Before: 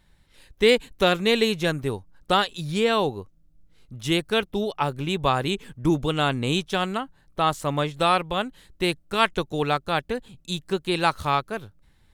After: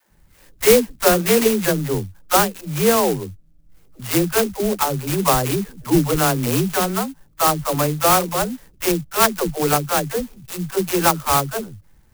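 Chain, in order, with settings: steep low-pass 3.3 kHz 36 dB/octave; phase dispersion lows, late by 112 ms, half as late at 320 Hz; sampling jitter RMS 0.091 ms; trim +5.5 dB

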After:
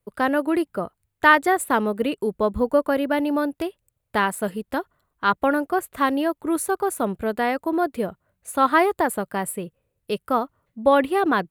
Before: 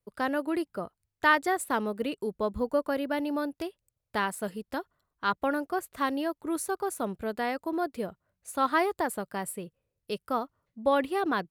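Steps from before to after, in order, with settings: peaking EQ 5.3 kHz -7.5 dB 0.84 oct; trim +8 dB

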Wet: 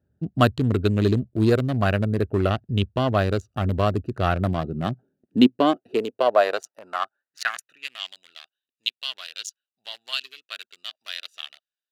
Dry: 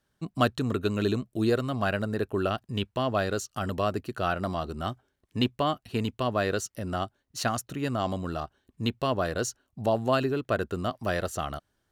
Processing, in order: local Wiener filter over 41 samples; high-pass sweep 77 Hz -> 3.3 kHz, 4.22–8.13 s; trim +5.5 dB

